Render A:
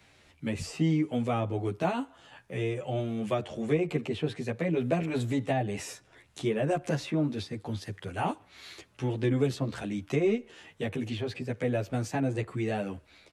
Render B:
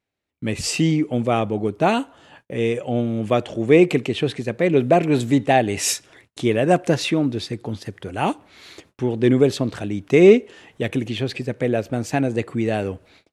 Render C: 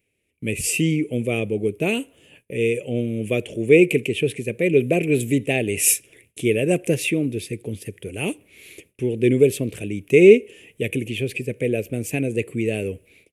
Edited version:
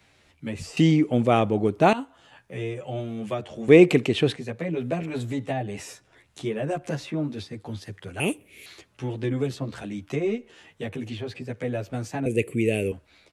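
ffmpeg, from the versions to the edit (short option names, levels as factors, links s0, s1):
-filter_complex "[1:a]asplit=2[s0][s1];[2:a]asplit=2[s2][s3];[0:a]asplit=5[s4][s5][s6][s7][s8];[s4]atrim=end=0.772[s9];[s0]atrim=start=0.768:end=1.932[s10];[s5]atrim=start=1.928:end=3.682[s11];[s1]atrim=start=3.678:end=4.362[s12];[s6]atrim=start=4.358:end=8.202[s13];[s2]atrim=start=8.198:end=8.662[s14];[s7]atrim=start=8.658:end=12.262[s15];[s3]atrim=start=12.258:end=12.922[s16];[s8]atrim=start=12.918[s17];[s9][s10]acrossfade=d=0.004:c1=hsin:c2=hsin[s18];[s18][s11]acrossfade=d=0.004:c1=hsin:c2=hsin[s19];[s19][s12]acrossfade=d=0.004:c1=hsin:c2=hsin[s20];[s20][s13]acrossfade=d=0.004:c1=hsin:c2=hsin[s21];[s21][s14]acrossfade=d=0.004:c1=hsin:c2=hsin[s22];[s22][s15]acrossfade=d=0.004:c1=hsin:c2=hsin[s23];[s23][s16]acrossfade=d=0.004:c1=hsin:c2=hsin[s24];[s24][s17]acrossfade=d=0.004:c1=hsin:c2=hsin"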